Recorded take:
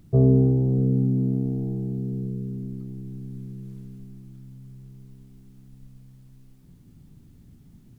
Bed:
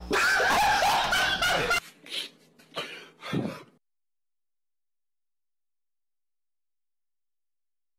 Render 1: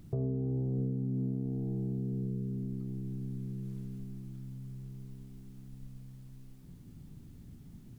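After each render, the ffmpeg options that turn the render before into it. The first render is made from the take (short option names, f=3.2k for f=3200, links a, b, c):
-af "alimiter=limit=-18.5dB:level=0:latency=1:release=404,acompressor=threshold=-36dB:ratio=2"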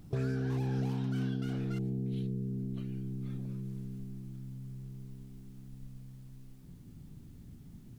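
-filter_complex "[1:a]volume=-26.5dB[a];[0:a][a]amix=inputs=2:normalize=0"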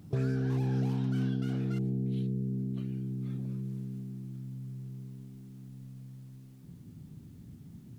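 -af "highpass=99,lowshelf=f=250:g=5.5"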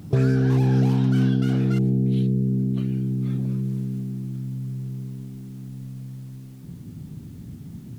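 -af "volume=11dB"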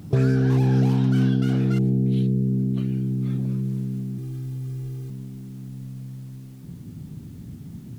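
-filter_complex "[0:a]asettb=1/sr,asplit=3[a][b][c];[a]atrim=end=4.184[d];[b]atrim=start=4.18:end=5.1,asetpts=PTS-STARTPTS,afade=t=in:d=0.004:c=qsin,afade=t=out:st=0.916:d=0.004:c=qsin,aecho=1:1:2.5:0.87,atrim=end_sample=40572[e];[c]atrim=start=5.096[f];[d][e]acrossfade=d=0.004:c1=hsin:c2=qsin[g];[g][f]acrossfade=d=0.004:c1=qsin:c2=hsin"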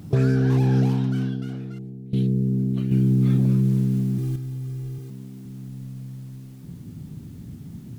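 -filter_complex "[0:a]asettb=1/sr,asplit=3[a][b][c];[a]atrim=end=2.914[d];[b]atrim=start=2.91:end=4.36,asetpts=PTS-STARTPTS,afade=t=in:d=0.004:c=qsin,afade=t=out:st=1.446:d=0.004:c=qsin,acontrast=68[e];[c]atrim=start=4.356[f];[d][e]acrossfade=d=0.004:c1=hsin:c2=qsin[g];[g][f]acrossfade=d=0.004:c1=qsin:c2=hsin,asettb=1/sr,asplit=3[h][i][j];[h]atrim=end=4.984[k];[i]atrim=start=4.98:end=5.46,asetpts=PTS-STARTPTS,afade=t=in:d=0.004:c=qsin,afade=t=out:st=0.476:d=0.004:c=qsin,highpass=140[l];[j]atrim=start=5.456[m];[k][l]acrossfade=d=0.004:c1=hsin:c2=qsin[n];[n][m]acrossfade=d=0.004:c1=qsin:c2=hsin,asplit=2[o][p];[o]atrim=end=2.13,asetpts=PTS-STARTPTS,afade=t=out:st=0.79:d=1.34:c=qua:silence=0.133352[q];[p]atrim=start=2.13,asetpts=PTS-STARTPTS,afade=t=in:d=0.004:c=hsin:silence=0.133352[r];[q][r]concat=n=2:v=0:a=1"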